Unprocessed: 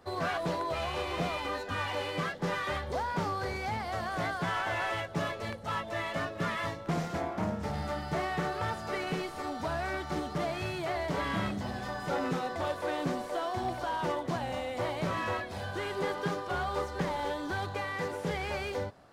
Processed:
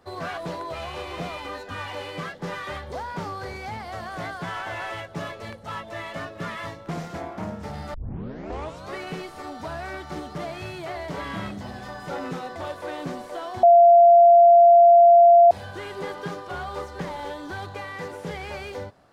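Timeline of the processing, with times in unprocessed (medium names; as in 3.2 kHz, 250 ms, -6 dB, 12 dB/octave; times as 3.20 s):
7.94 s: tape start 1.04 s
13.63–15.51 s: bleep 689 Hz -9 dBFS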